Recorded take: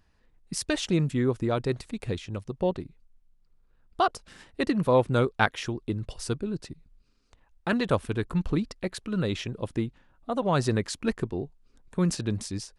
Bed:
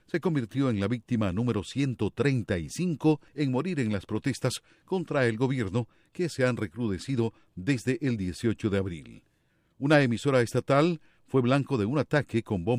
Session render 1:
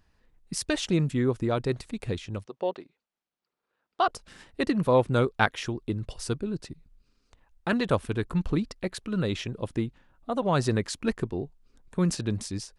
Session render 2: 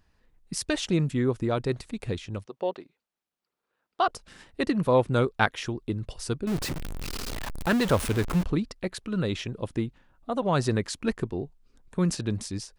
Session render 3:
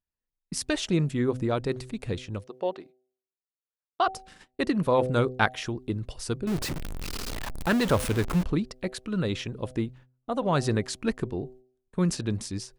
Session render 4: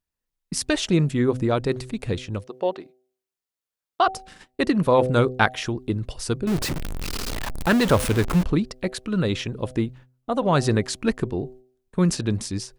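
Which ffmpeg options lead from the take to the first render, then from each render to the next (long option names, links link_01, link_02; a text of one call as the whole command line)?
ffmpeg -i in.wav -filter_complex "[0:a]asplit=3[link_01][link_02][link_03];[link_01]afade=type=out:start_time=2.44:duration=0.02[link_04];[link_02]highpass=430,lowpass=5400,afade=type=in:start_time=2.44:duration=0.02,afade=type=out:start_time=4.05:duration=0.02[link_05];[link_03]afade=type=in:start_time=4.05:duration=0.02[link_06];[link_04][link_05][link_06]amix=inputs=3:normalize=0" out.wav
ffmpeg -i in.wav -filter_complex "[0:a]asettb=1/sr,asplit=3[link_01][link_02][link_03];[link_01]atrim=end=6.474[link_04];[link_02]atrim=start=6.47:end=8.44,asetpts=PTS-STARTPTS,afade=type=in:duration=0.004:curve=qsin,afade=type=out:start_time=1.966:duration=0.004:curve=qsin,aeval=exprs='val(0)+0.5*0.0447*sgn(val(0))':channel_layout=same[link_05];[link_03]atrim=start=8.436[link_06];[link_04][link_05]acrossfade=duration=0.004:curve1=hsin:curve2=qsin[link_07];[link_07][link_06]acrossfade=duration=0.004:curve1=qsin:curve2=hsin" out.wav
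ffmpeg -i in.wav -af "agate=range=-28dB:threshold=-49dB:ratio=16:detection=peak,bandreject=frequency=127.2:width_type=h:width=4,bandreject=frequency=254.4:width_type=h:width=4,bandreject=frequency=381.6:width_type=h:width=4,bandreject=frequency=508.8:width_type=h:width=4,bandreject=frequency=636:width_type=h:width=4,bandreject=frequency=763.2:width_type=h:width=4" out.wav
ffmpeg -i in.wav -af "volume=5dB,alimiter=limit=-2dB:level=0:latency=1" out.wav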